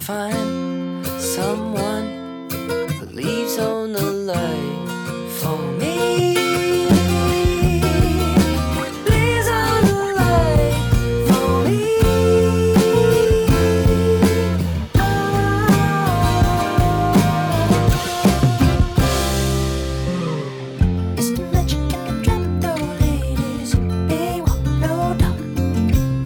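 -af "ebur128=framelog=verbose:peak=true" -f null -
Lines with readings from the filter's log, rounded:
Integrated loudness:
  I:         -18.2 LUFS
  Threshold: -28.3 LUFS
Loudness range:
  LRA:         7.1 LU
  Threshold: -38.0 LUFS
  LRA low:   -22.8 LUFS
  LRA high:  -15.7 LUFS
True peak:
  Peak:       -5.8 dBFS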